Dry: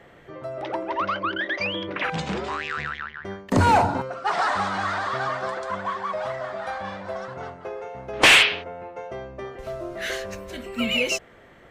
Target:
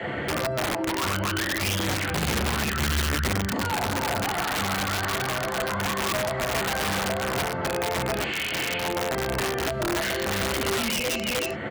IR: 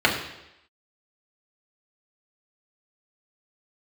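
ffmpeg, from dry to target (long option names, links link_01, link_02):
-filter_complex "[0:a]asplit=2[link_01][link_02];[link_02]adelay=309,volume=-12dB,highshelf=frequency=4000:gain=-6.95[link_03];[link_01][link_03]amix=inputs=2:normalize=0,acompressor=threshold=-28dB:ratio=12[link_04];[1:a]atrim=start_sample=2205,atrim=end_sample=3528[link_05];[link_04][link_05]afir=irnorm=-1:irlink=0,acrossover=split=360|6800[link_06][link_07][link_08];[link_06]acompressor=threshold=-27dB:ratio=4[link_09];[link_07]acompressor=threshold=-25dB:ratio=4[link_10];[link_08]acompressor=threshold=-58dB:ratio=4[link_11];[link_09][link_10][link_11]amix=inputs=3:normalize=0,asplit=3[link_12][link_13][link_14];[link_12]afade=type=out:start_time=1.05:duration=0.02[link_15];[link_13]asubboost=boost=6.5:cutoff=170,afade=type=in:start_time=1.05:duration=0.02,afade=type=out:start_time=3.52:duration=0.02[link_16];[link_14]afade=type=in:start_time=3.52:duration=0.02[link_17];[link_15][link_16][link_17]amix=inputs=3:normalize=0,alimiter=limit=-18.5dB:level=0:latency=1:release=457,aeval=exprs='(mod(11.9*val(0)+1,2)-1)/11.9':channel_layout=same,highpass=49,lowshelf=frequency=97:gain=5,volume=1.5dB"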